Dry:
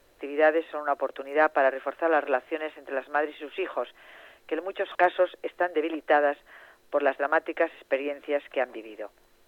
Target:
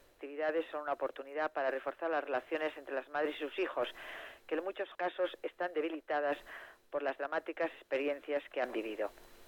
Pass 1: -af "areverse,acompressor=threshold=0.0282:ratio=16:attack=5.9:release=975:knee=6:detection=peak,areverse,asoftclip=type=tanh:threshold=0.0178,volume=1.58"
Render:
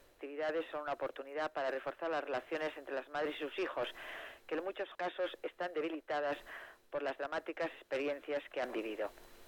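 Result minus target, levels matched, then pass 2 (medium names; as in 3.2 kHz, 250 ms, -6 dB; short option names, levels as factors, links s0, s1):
saturation: distortion +9 dB
-af "areverse,acompressor=threshold=0.0282:ratio=16:attack=5.9:release=975:knee=6:detection=peak,areverse,asoftclip=type=tanh:threshold=0.0398,volume=1.58"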